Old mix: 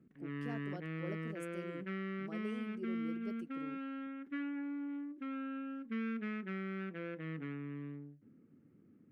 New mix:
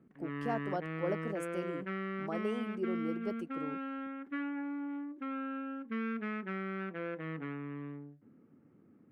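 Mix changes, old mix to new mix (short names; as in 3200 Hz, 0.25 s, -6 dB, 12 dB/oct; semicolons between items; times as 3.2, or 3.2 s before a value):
speech +5.5 dB; master: add bell 860 Hz +10.5 dB 1.6 oct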